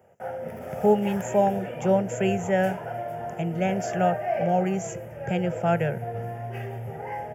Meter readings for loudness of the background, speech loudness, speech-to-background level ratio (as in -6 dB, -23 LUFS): -33.5 LUFS, -26.0 LUFS, 7.5 dB